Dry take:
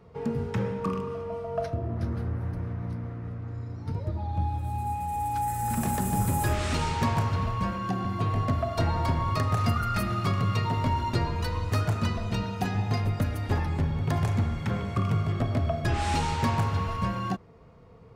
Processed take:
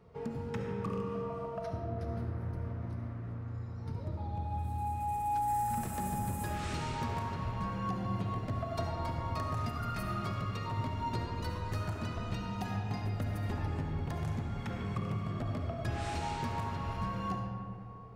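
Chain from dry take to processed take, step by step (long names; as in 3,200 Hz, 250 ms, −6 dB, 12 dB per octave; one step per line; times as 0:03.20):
downward compressor, threshold −28 dBFS, peak gain reduction 7.5 dB
convolution reverb RT60 2.8 s, pre-delay 30 ms, DRR 2.5 dB
level −6 dB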